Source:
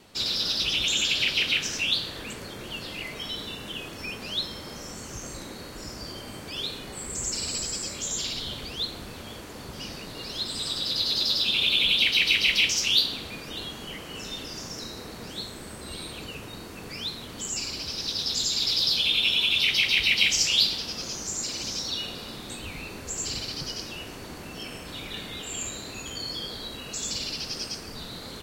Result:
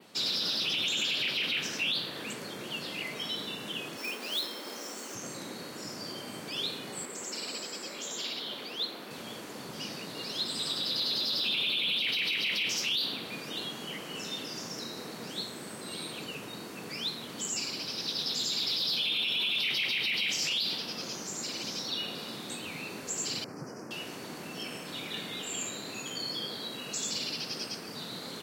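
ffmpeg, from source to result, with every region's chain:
-filter_complex "[0:a]asettb=1/sr,asplit=3[a][b][c];[a]atrim=end=3.974[d];[b]atrim=start=3.97:end=5.15,asetpts=PTS-STARTPTS,afade=t=in:d=0.004:c=qsin,afade=t=out:st=1.176:d=0.004:c=qsin,highpass=f=250:w=0.5412,highpass=f=250:w=1.3066,acrusher=bits=2:mode=log:mix=0:aa=0.000001[e];[c]atrim=start=5.146[f];[d][e]acrossfade=d=0.004:c1=hsin:c2=qsin[g];[g][f]acrossfade=d=0.004:c1=qsin:c2=hsin,asettb=1/sr,asplit=3[h][i][j];[h]atrim=end=7.054[k];[i]atrim=start=7.05:end=9.11,asetpts=PTS-STARTPTS,afade=t=in:d=0.004:c=qsin,afade=t=out:st=2.056:d=0.004:c=qsin,highpass=270,equalizer=f=7.8k:t=o:w=1.2:g=-7.5[l];[j]atrim=start=9.106[m];[k][l]acrossfade=d=0.004:c1=hsin:c2=qsin[n];[n][m]acrossfade=d=0.004:c1=qsin:c2=hsin,asettb=1/sr,asplit=3[o][p][q];[o]atrim=end=23.444[r];[p]atrim=start=23.44:end=23.91,asetpts=PTS-STARTPTS,afade=t=in:d=0.004:c=qsin,afade=t=out:st=0.466:d=0.004:c=qsin,asuperstop=centerf=3500:order=4:qfactor=0.63,aemphasis=mode=reproduction:type=50kf[s];[q]atrim=start=23.906[t];[r][s]acrossfade=d=0.004:c1=hsin:c2=qsin[u];[u][t]acrossfade=d=0.004:c1=qsin:c2=hsin,highpass=f=140:w=0.5412,highpass=f=140:w=1.3066,adynamicequalizer=threshold=0.00708:dfrequency=6700:dqfactor=1.3:tfrequency=6700:tqfactor=1.3:attack=5:release=100:ratio=0.375:range=4:mode=cutabove:tftype=bell,alimiter=limit=-21dB:level=0:latency=1:release=10,volume=-1dB"

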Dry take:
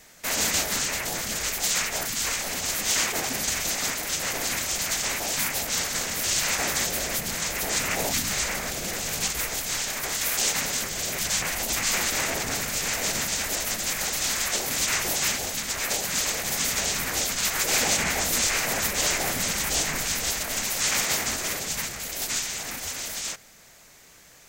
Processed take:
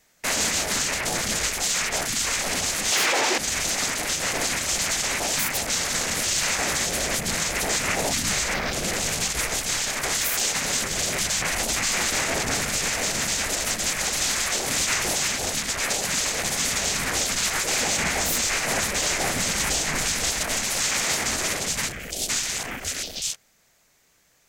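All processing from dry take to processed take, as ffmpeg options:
-filter_complex "[0:a]asettb=1/sr,asplit=3[a][b][c];[a]atrim=end=2.924[d];[b]atrim=start=2.92:end=3.38,asetpts=PTS-STARTPTS,afade=t=in:d=0.004:c=qsin,afade=t=out:st=0.456:d=0.004:c=qsin,highpass=170,lowpass=5.7k,aeval=exprs='0.237*sin(PI/2*3.55*val(0)/0.237)':c=same,afreqshift=110[e];[c]atrim=start=3.376[f];[d][e]acrossfade=d=0.004:c1=hsin:c2=qsin[g];[g][f]acrossfade=d=0.004:c1=qsin:c2=hsin,afwtdn=0.0158,acontrast=46,alimiter=limit=-14dB:level=0:latency=1:release=150"

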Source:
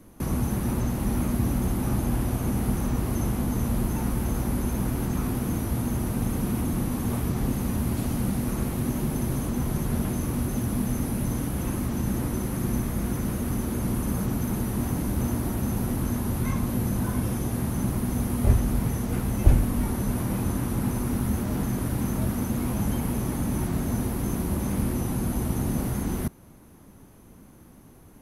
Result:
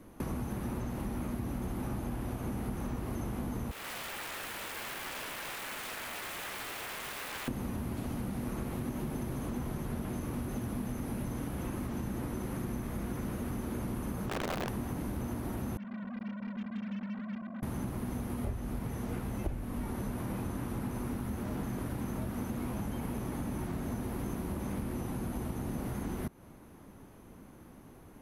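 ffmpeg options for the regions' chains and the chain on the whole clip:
-filter_complex "[0:a]asettb=1/sr,asplit=3[a][b][c];[a]atrim=end=3.714[d];[b]atrim=start=3.71:end=7.48,asetpts=PTS-STARTPTS,afade=t=in:d=0.004:c=qsin,afade=t=out:st=3.766:d=0.004:c=qsin,aeval=exprs='(mod(31.6*val(0)+1,2)-1)/31.6':c=same,aeval=exprs='val(0)*sin(2*PI*1600*n/s)':c=same[e];[c]atrim=start=7.476[f];[d][e]acrossfade=d=0.004:c1=hsin:c2=qsin[g];[g][f]acrossfade=d=0.004:c1=qsin:c2=hsin,asettb=1/sr,asplit=3[h][i][j];[h]atrim=end=14.294[k];[i]atrim=start=14.29:end=14.69,asetpts=PTS-STARTPTS,afade=t=in:d=0.004:c=qsin,afade=t=out:st=0.396:d=0.004:c=qsin,lowpass=4.7k,aeval=exprs='(mod(12.6*val(0)+1,2)-1)/12.6':c=same[l];[j]atrim=start=14.686[m];[k][l]acrossfade=d=0.004:c1=hsin:c2=qsin[n];[n][m]acrossfade=d=0.004:c1=qsin:c2=hsin,asettb=1/sr,asplit=3[o][p][q];[o]atrim=end=15.774[r];[p]atrim=start=15.77:end=17.63,asetpts=PTS-STARTPTS,afade=t=in:d=0.004:c=qsin,afade=t=out:st=1.856:d=0.004:c=qsin,asuperpass=centerf=210:order=4:qfactor=7,acrusher=bits=6:mix=0:aa=0.5[s];[q]atrim=start=17.626[t];[r][s]acrossfade=d=0.004:c1=hsin:c2=qsin[u];[u][t]acrossfade=d=0.004:c1=qsin:c2=hsin,acompressor=threshold=-31dB:ratio=4,bass=f=250:g=-4,treble=f=4k:g=-7"

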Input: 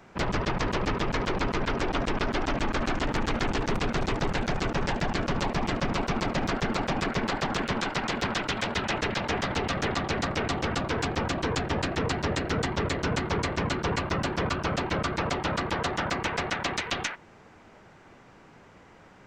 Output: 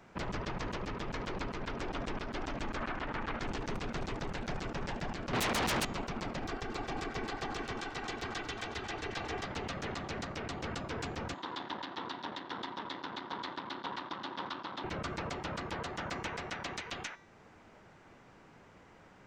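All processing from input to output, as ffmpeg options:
-filter_complex "[0:a]asettb=1/sr,asplit=3[a][b][c];[a]atrim=end=2.774[d];[b]atrim=start=2.77:end=3.41,asetpts=PTS-STARTPTS,afade=t=in:d=0.004:c=qsin,afade=t=out:st=0.636:d=0.004:c=qsin,acrossover=split=4100[e][f];[f]acompressor=threshold=-53dB:ratio=4:attack=1:release=60[g];[e][g]amix=inputs=2:normalize=0,lowpass=7.8k,equalizer=f=1.4k:t=o:w=2.2:g=7[h];[c]atrim=start=3.406[i];[d][h]acrossfade=d=0.004:c1=hsin:c2=qsin[j];[j][i]acrossfade=d=0.004:c1=qsin:c2=hsin,asettb=1/sr,asplit=3[k][l][m];[k]atrim=end=5.334[n];[l]atrim=start=5.33:end=5.85,asetpts=PTS-STARTPTS,afade=t=in:d=0.004:c=qsin,afade=t=out:st=0.516:d=0.004:c=qsin,highpass=98,aeval=exprs='0.168*sin(PI/2*6.31*val(0)/0.168)':c=same[o];[m]atrim=start=5.846[p];[n][o]acrossfade=d=0.004:c1=hsin:c2=qsin[q];[q][p]acrossfade=d=0.004:c1=qsin:c2=hsin,asettb=1/sr,asplit=3[r][s][t];[r]atrim=end=6.434[u];[s]atrim=start=6.43:end=9.46,asetpts=PTS-STARTPTS,afade=t=in:d=0.004:c=qsin,afade=t=out:st=3.026:d=0.004:c=qsin,aecho=1:1:2.6:0.49,atrim=end_sample=133623,aecho=1:1:227:0.178,atrim=end_sample=133623[v];[t]atrim=start=9.456[w];[u][v]acrossfade=d=0.004:c1=hsin:c2=qsin[x];[x][w]acrossfade=d=0.004:c1=qsin:c2=hsin,asettb=1/sr,asplit=3[y][z][aa];[y]atrim=end=11.344[ab];[z]atrim=start=11.34:end=14.84,asetpts=PTS-STARTPTS,afade=t=in:d=0.004:c=qsin,afade=t=out:st=3.496:d=0.004:c=qsin,aeval=exprs='max(val(0),0)':c=same,highpass=260,equalizer=f=300:t=q:w=4:g=4,equalizer=f=440:t=q:w=4:g=-8,equalizer=f=640:t=q:w=4:g=-5,equalizer=f=960:t=q:w=4:g=9,equalizer=f=2.4k:t=q:w=4:g=-7,equalizer=f=3.6k:t=q:w=4:g=8,lowpass=f=4.7k:w=0.5412,lowpass=f=4.7k:w=1.3066[ac];[aa]atrim=start=14.836[ad];[ab][ac]acrossfade=d=0.004:c1=hsin:c2=qsin[ae];[ae][ad]acrossfade=d=0.004:c1=qsin:c2=hsin,bandreject=f=389:t=h:w=4,bandreject=f=778:t=h:w=4,bandreject=f=1.167k:t=h:w=4,bandreject=f=1.556k:t=h:w=4,bandreject=f=1.945k:t=h:w=4,bandreject=f=2.334k:t=h:w=4,bandreject=f=2.723k:t=h:w=4,bandreject=f=3.112k:t=h:w=4,bandreject=f=3.501k:t=h:w=4,bandreject=f=3.89k:t=h:w=4,bandreject=f=4.279k:t=h:w=4,bandreject=f=4.668k:t=h:w=4,bandreject=f=5.057k:t=h:w=4,bandreject=f=5.446k:t=h:w=4,bandreject=f=5.835k:t=h:w=4,bandreject=f=6.224k:t=h:w=4,bandreject=f=6.613k:t=h:w=4,bandreject=f=7.002k:t=h:w=4,bandreject=f=7.391k:t=h:w=4,alimiter=limit=-22dB:level=0:latency=1:release=381,volume=-5dB"

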